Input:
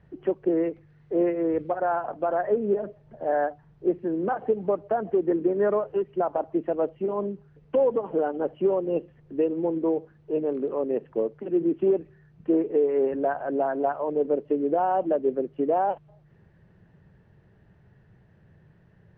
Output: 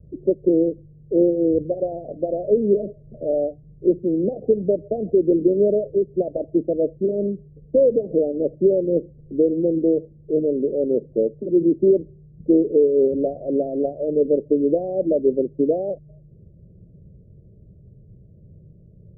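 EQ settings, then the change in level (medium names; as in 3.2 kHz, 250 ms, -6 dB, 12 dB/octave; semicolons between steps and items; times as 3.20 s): steep low-pass 610 Hz 72 dB/octave; bass shelf 110 Hz +9.5 dB; +5.5 dB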